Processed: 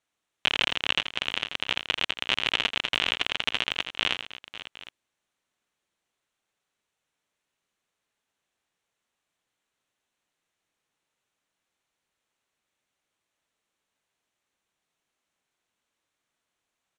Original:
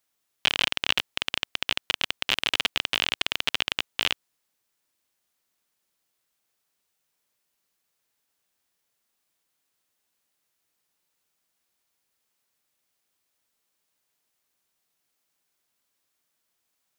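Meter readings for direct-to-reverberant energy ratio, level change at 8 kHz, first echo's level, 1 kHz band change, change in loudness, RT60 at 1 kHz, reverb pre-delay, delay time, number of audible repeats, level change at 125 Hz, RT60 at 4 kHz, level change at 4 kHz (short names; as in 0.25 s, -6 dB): none, -5.5 dB, -9.5 dB, +0.5 dB, -0.5 dB, none, none, 83 ms, 3, +0.5 dB, none, -0.5 dB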